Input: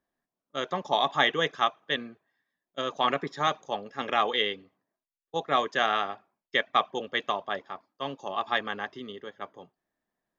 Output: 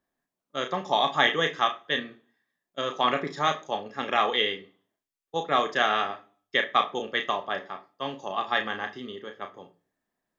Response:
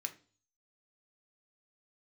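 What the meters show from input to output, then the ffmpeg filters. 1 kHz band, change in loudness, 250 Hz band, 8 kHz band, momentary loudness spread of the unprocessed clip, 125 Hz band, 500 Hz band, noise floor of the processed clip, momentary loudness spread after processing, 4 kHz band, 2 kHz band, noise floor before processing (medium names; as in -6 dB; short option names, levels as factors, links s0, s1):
+1.5 dB, +2.0 dB, +1.5 dB, no reading, 16 LU, +1.5 dB, +1.5 dB, under -85 dBFS, 16 LU, +2.0 dB, +2.5 dB, under -85 dBFS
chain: -filter_complex "[0:a]asplit=2[s0][s1];[1:a]atrim=start_sample=2205,adelay=33[s2];[s1][s2]afir=irnorm=-1:irlink=0,volume=0.631[s3];[s0][s3]amix=inputs=2:normalize=0,volume=1.12"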